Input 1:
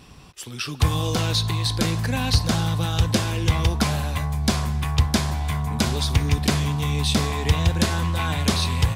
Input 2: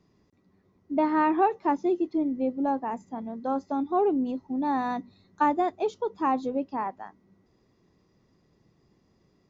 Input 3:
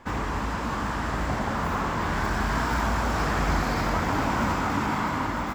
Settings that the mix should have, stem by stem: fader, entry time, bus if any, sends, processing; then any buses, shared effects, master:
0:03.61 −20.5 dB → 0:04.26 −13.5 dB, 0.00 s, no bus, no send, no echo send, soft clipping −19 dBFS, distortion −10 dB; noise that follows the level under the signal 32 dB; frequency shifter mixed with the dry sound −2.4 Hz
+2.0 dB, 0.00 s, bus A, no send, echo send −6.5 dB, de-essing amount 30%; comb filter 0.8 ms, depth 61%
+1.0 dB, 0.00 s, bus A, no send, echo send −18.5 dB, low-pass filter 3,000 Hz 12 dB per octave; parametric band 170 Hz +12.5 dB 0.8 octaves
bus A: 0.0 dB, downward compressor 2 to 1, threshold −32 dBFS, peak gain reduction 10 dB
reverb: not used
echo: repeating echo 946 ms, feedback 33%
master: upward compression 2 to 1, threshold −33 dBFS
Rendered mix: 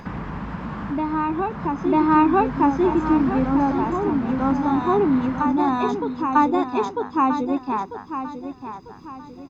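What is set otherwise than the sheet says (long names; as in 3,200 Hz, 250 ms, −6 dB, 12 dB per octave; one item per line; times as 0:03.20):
stem 1: muted
stem 2 +2.0 dB → +11.5 dB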